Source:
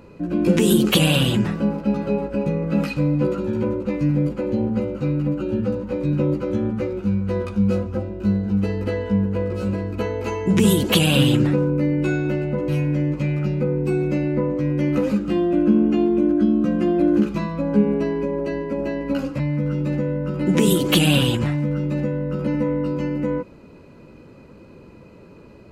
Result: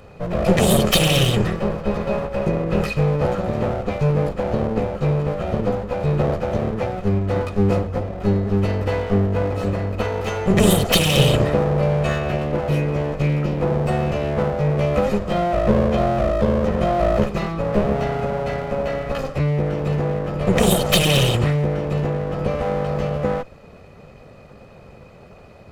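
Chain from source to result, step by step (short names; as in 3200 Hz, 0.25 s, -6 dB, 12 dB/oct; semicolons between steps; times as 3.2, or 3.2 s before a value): minimum comb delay 1.6 ms; gain +3.5 dB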